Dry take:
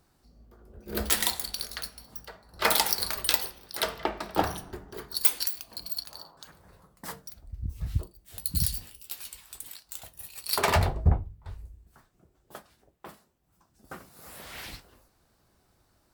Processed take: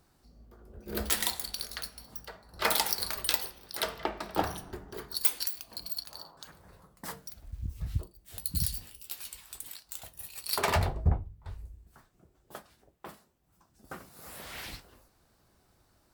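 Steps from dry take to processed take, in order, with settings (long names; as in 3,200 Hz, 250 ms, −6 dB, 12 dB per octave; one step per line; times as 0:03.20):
in parallel at −3 dB: downward compressor, threshold −39 dBFS, peak gain reduction 22.5 dB
0:07.06–0:07.79: on the sum: bit-depth reduction 10 bits, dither none
level −4.5 dB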